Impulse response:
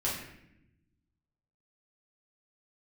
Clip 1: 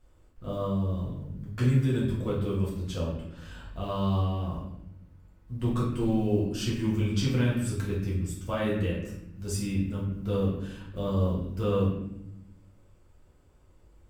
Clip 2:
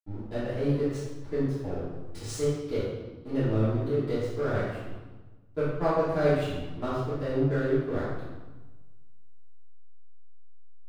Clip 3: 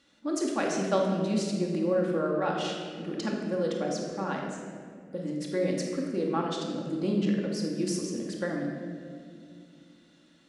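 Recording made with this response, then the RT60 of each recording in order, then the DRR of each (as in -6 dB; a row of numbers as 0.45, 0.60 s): 1; 0.80, 1.2, 2.3 s; -6.5, -15.0, -1.5 dB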